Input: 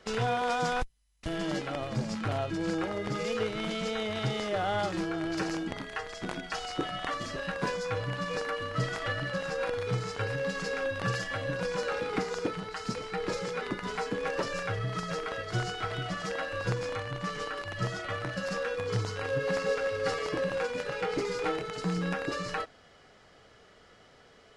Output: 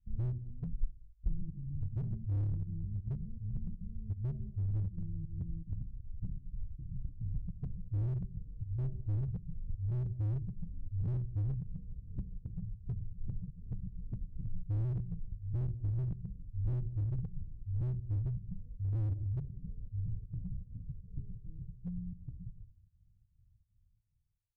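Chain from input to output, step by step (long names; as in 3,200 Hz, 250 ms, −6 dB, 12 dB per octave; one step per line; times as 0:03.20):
fade-out on the ending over 4.26 s
fake sidechain pumping 160 BPM, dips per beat 1, −23 dB, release 160 ms
inverse Chebyshev low-pass filter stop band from 620 Hz, stop band 80 dB
soft clipping −37.5 dBFS, distortion −12 dB
convolution reverb, pre-delay 3 ms, DRR 11.5 dB
slew-rate limiting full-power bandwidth 0.58 Hz
level +14.5 dB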